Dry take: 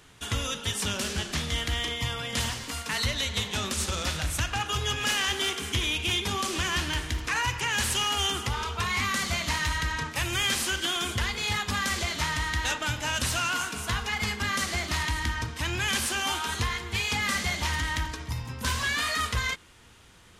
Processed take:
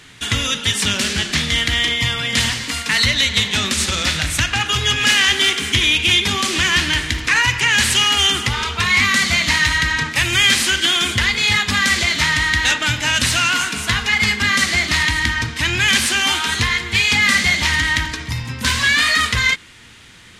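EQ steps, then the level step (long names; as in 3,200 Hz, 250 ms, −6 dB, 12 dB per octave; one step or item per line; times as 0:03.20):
graphic EQ with 10 bands 125 Hz +5 dB, 250 Hz +6 dB, 2,000 Hz +10 dB, 4,000 Hz +7 dB, 8,000 Hz +5 dB
+4.0 dB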